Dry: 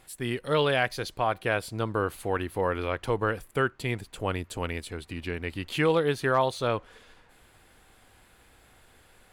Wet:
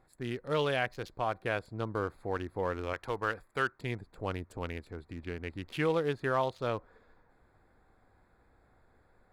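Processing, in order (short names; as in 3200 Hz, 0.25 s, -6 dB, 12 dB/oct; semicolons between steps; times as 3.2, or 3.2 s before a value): Wiener smoothing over 15 samples; 2.93–3.81 tilt shelf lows -6 dB, about 730 Hz; gain -5.5 dB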